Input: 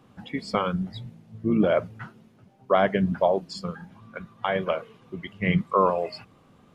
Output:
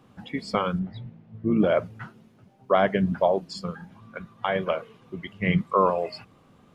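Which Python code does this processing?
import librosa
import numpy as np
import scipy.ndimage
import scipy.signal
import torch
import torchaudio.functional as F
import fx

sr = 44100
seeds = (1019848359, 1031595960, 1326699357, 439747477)

y = fx.lowpass(x, sr, hz=2600.0, slope=12, at=(0.79, 1.57))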